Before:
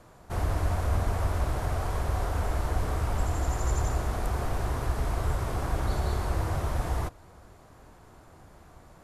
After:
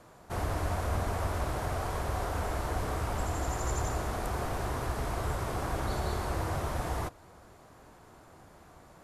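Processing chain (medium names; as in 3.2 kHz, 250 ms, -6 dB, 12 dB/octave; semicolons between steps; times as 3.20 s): bass shelf 91 Hz -9.5 dB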